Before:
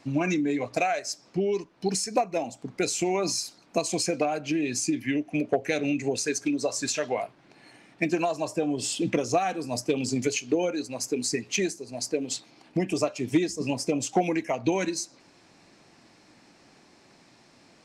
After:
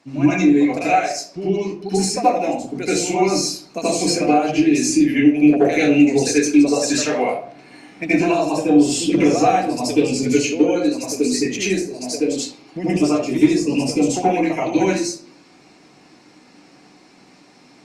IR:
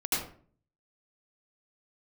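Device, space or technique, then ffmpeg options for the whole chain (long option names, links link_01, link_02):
far-field microphone of a smart speaker: -filter_complex "[1:a]atrim=start_sample=2205[link_01];[0:a][link_01]afir=irnorm=-1:irlink=0,highpass=130,dynaudnorm=framelen=510:gausssize=17:maxgain=11.5dB,volume=-1dB" -ar 48000 -c:a libopus -b:a 48k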